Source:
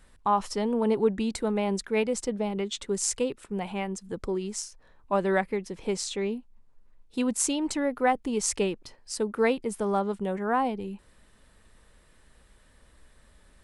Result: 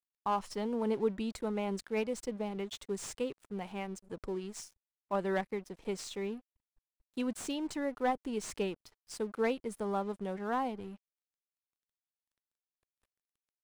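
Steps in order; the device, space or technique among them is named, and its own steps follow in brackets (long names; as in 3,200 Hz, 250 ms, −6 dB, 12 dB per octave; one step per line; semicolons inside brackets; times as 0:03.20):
early transistor amplifier (dead-zone distortion −48 dBFS; slew-rate limiting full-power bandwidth 120 Hz)
level −7 dB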